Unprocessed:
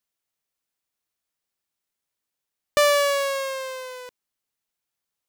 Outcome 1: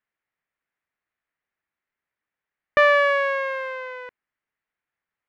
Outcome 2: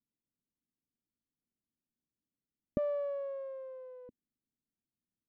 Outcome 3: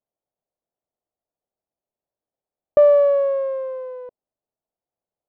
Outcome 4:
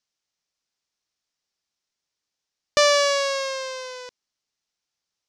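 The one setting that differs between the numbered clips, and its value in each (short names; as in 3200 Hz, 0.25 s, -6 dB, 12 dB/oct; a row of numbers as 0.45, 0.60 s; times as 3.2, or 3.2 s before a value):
synth low-pass, frequency: 1900, 250, 650, 5600 Hz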